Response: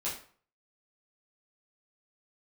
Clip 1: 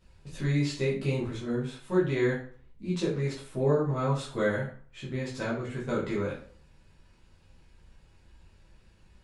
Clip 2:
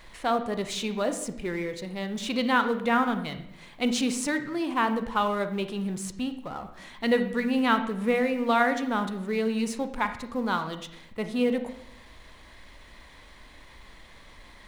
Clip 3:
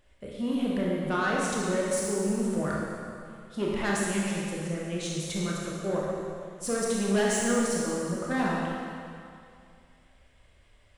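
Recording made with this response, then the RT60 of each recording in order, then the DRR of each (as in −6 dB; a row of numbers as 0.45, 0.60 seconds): 1; 0.45, 0.75, 2.4 seconds; −8.0, 8.5, −4.5 decibels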